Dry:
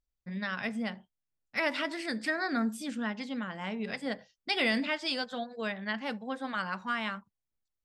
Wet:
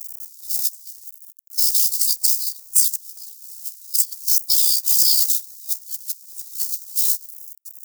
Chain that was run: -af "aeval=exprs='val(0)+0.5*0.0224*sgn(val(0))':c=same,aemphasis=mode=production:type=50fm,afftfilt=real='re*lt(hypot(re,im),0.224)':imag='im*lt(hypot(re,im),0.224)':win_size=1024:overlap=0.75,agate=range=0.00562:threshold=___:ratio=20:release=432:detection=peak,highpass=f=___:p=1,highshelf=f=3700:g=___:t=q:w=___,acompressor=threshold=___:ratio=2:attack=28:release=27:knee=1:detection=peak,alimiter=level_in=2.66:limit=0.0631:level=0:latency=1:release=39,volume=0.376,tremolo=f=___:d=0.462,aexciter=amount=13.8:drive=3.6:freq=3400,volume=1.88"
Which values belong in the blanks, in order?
0.0631, 1300, 14, 1.5, 0.00316, 64